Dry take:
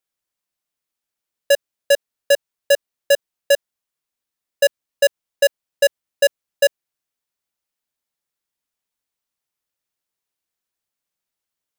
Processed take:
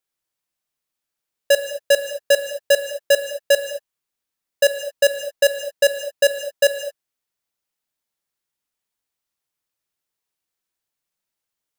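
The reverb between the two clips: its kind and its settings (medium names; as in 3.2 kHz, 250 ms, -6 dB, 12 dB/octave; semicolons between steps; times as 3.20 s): gated-style reverb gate 250 ms flat, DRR 7.5 dB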